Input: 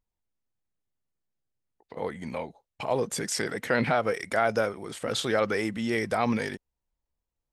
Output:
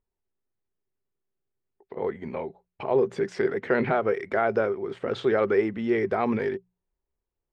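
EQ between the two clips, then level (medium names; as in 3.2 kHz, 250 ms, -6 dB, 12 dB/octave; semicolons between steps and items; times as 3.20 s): low-pass 2.2 kHz 12 dB/octave; peaking EQ 390 Hz +14 dB 0.24 oct; hum notches 60/120/180 Hz; 0.0 dB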